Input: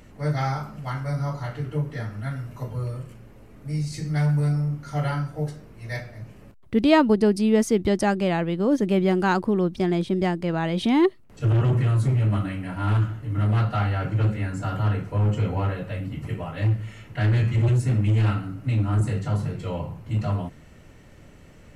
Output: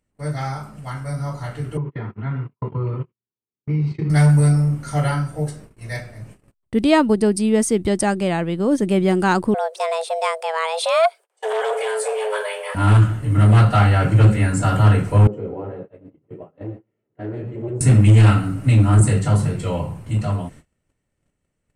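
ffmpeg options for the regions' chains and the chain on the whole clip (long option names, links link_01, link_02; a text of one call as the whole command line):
ffmpeg -i in.wav -filter_complex "[0:a]asettb=1/sr,asplit=3[link_01][link_02][link_03];[link_01]atrim=end=1.774[link_04];[link_02]atrim=start=1.77:end=4.1,asetpts=PTS-STARTPTS,afade=type=in:duration=0.004:curve=qsin,afade=type=out:start_time=2.326:duration=0.004:curve=qsin,agate=range=-34dB:threshold=-34dB:ratio=16:release=100:detection=peak,acompressor=threshold=-28dB:ratio=2.5:attack=3.2:release=140:knee=1:detection=peak,highpass=110,equalizer=frequency=140:width_type=q:width=4:gain=3,equalizer=frequency=380:width_type=q:width=4:gain=8,equalizer=frequency=610:width_type=q:width=4:gain=-9,equalizer=frequency=1000:width_type=q:width=4:gain=7,equalizer=frequency=1700:width_type=q:width=4:gain=-7,lowpass=frequency=2800:width=0.5412,lowpass=frequency=2800:width=1.3066[link_05];[link_03]atrim=start=4.096[link_06];[link_04][link_05]acrossfade=duration=0.004:curve1=hsin:curve2=qsin[link_07];[link_07][link_06]acrossfade=duration=0.004:curve1=qsin:curve2=hsin,asettb=1/sr,asplit=3[link_08][link_09][link_10];[link_08]atrim=end=9.544[link_11];[link_09]atrim=start=9.54:end=12.75,asetpts=PTS-STARTPTS,afade=type=in:duration=0.004:curve=qsin,afade=type=out:start_time=3.206:duration=0.004:curve=qsin,highpass=frequency=440:poles=1,afreqshift=320[link_12];[link_10]atrim=start=12.746[link_13];[link_11][link_12]acrossfade=duration=0.004:curve1=hsin:curve2=qsin[link_14];[link_14][link_13]acrossfade=duration=0.004:curve1=qsin:curve2=hsin,asettb=1/sr,asplit=3[link_15][link_16][link_17];[link_15]atrim=end=15.274[link_18];[link_16]atrim=start=15.27:end=17.81,asetpts=PTS-STARTPTS,afade=type=in:duration=0.004:curve=qsin,afade=type=out:start_time=2.536:duration=0.004:curve=qsin,flanger=delay=4.5:depth=8.7:regen=74:speed=1.7:shape=sinusoidal,bandpass=frequency=400:width_type=q:width=2.2,aecho=1:1:122:0.251,atrim=end_sample=112014[link_19];[link_17]atrim=start=17.806[link_20];[link_18][link_19]acrossfade=duration=0.004:curve1=hsin:curve2=qsin[link_21];[link_21][link_20]acrossfade=duration=0.004:curve1=qsin:curve2=hsin,agate=range=-26dB:threshold=-43dB:ratio=16:detection=peak,equalizer=frequency=8700:width=3.1:gain=14.5,dynaudnorm=framelen=210:gausssize=21:maxgain=11dB,volume=-1dB" out.wav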